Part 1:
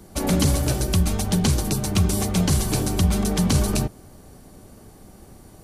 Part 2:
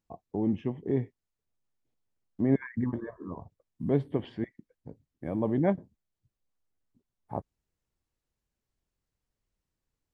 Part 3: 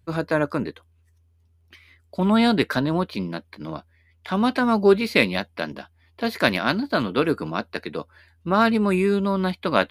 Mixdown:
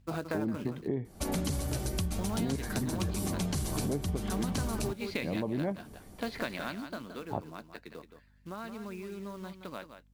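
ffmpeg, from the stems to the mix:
-filter_complex "[0:a]adelay=1050,volume=0.501[s0];[1:a]aeval=exprs='val(0)+0.000562*(sin(2*PI*50*n/s)+sin(2*PI*2*50*n/s)/2+sin(2*PI*3*50*n/s)/3+sin(2*PI*4*50*n/s)/4+sin(2*PI*5*50*n/s)/5)':c=same,volume=1.33[s1];[2:a]lowpass=5900,acompressor=threshold=0.0562:ratio=3,acrusher=bits=4:mode=log:mix=0:aa=0.000001,volume=0.501,afade=t=out:st=6.35:d=0.68:silence=0.334965,asplit=2[s2][s3];[s3]volume=0.335,aecho=0:1:171:1[s4];[s0][s1][s2][s4]amix=inputs=4:normalize=0,acompressor=threshold=0.0355:ratio=6"

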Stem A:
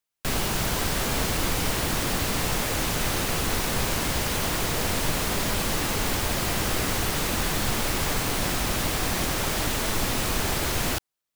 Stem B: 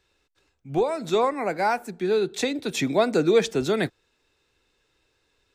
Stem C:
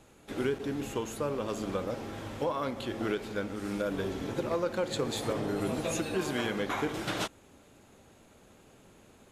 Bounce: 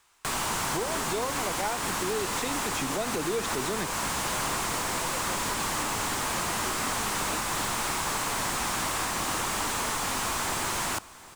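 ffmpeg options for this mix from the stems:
-filter_complex "[0:a]equalizer=f=500:t=o:w=1:g=-9,equalizer=f=1000:t=o:w=1:g=9,equalizer=f=8000:t=o:w=1:g=9,acrossover=split=550|6100[s0][s1][s2];[s0]acompressor=threshold=0.0126:ratio=4[s3];[s1]acompressor=threshold=0.00708:ratio=4[s4];[s2]acompressor=threshold=0.02:ratio=4[s5];[s3][s4][s5]amix=inputs=3:normalize=0,asplit=2[s6][s7];[s7]highpass=f=720:p=1,volume=39.8,asoftclip=type=tanh:threshold=0.178[s8];[s6][s8]amix=inputs=2:normalize=0,lowpass=f=1700:p=1,volume=0.501,volume=1.06,asplit=2[s9][s10];[s10]volume=0.112[s11];[1:a]volume=0.501[s12];[2:a]adelay=500,volume=0.251[s13];[s11]aecho=0:1:755:1[s14];[s9][s12][s13][s14]amix=inputs=4:normalize=0,alimiter=limit=0.1:level=0:latency=1:release=160"

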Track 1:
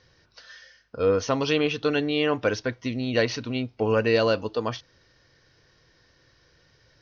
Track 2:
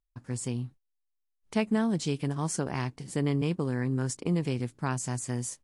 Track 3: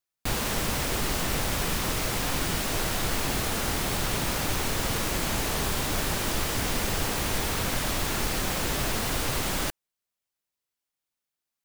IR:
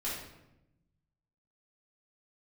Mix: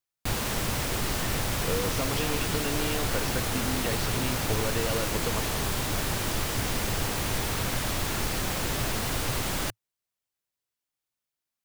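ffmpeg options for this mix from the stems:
-filter_complex "[0:a]adelay=700,volume=1.06[s0];[2:a]equalizer=f=110:t=o:w=0.5:g=5.5,volume=0.841[s1];[s0]acompressor=threshold=0.0316:ratio=6,volume=1[s2];[s1][s2]amix=inputs=2:normalize=0"

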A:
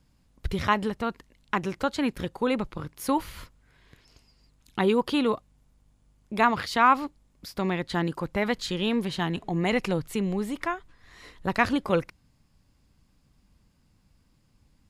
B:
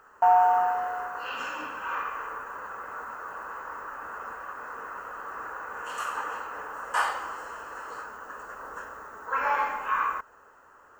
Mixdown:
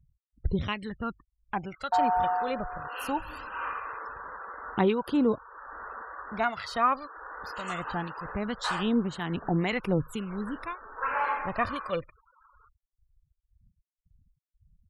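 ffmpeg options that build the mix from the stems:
-filter_complex "[0:a]acrossover=split=1300[s0][s1];[s0]aeval=exprs='val(0)*(1-0.7/2+0.7/2*cos(2*PI*1.9*n/s))':c=same[s2];[s1]aeval=exprs='val(0)*(1-0.7/2-0.7/2*cos(2*PI*1.9*n/s))':c=same[s3];[s2][s3]amix=inputs=2:normalize=0,aphaser=in_gain=1:out_gain=1:delay=1.7:decay=0.56:speed=0.21:type=sinusoidal,volume=0.631,asplit=2[s4][s5];[1:a]adelay=1700,volume=0.75[s6];[s5]apad=whole_len=559751[s7];[s6][s7]sidechaincompress=threshold=0.0316:ratio=12:attack=6.6:release=553[s8];[s4][s8]amix=inputs=2:normalize=0,afftfilt=real='re*gte(hypot(re,im),0.00501)':imag='im*gte(hypot(re,im),0.00501)':win_size=1024:overlap=0.75"

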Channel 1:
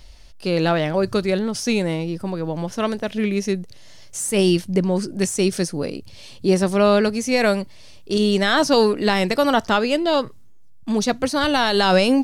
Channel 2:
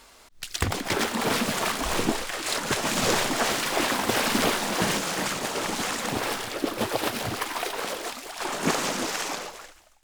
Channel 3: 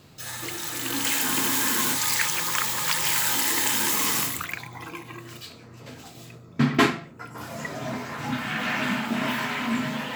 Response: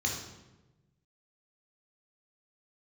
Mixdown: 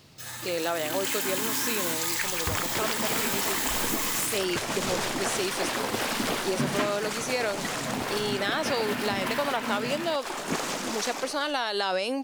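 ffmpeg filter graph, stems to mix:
-filter_complex "[0:a]highpass=420,volume=0.531[s0];[1:a]acontrast=85,adelay=1850,volume=0.299[s1];[2:a]volume=0.668[s2];[s0][s1][s2]amix=inputs=3:normalize=0,acompressor=threshold=0.0708:ratio=6"

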